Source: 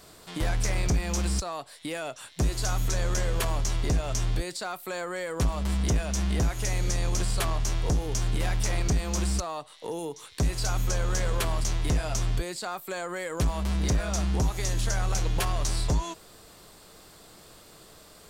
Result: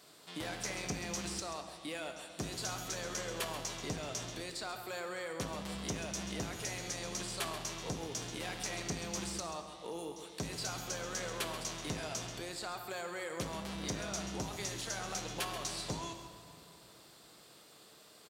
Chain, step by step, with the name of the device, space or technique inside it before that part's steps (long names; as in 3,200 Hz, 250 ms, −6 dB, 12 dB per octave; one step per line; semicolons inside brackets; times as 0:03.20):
PA in a hall (high-pass filter 160 Hz 12 dB per octave; parametric band 3,500 Hz +4 dB 1.4 octaves; single-tap delay 134 ms −11 dB; convolution reverb RT60 2.7 s, pre-delay 4 ms, DRR 7.5 dB)
level −9 dB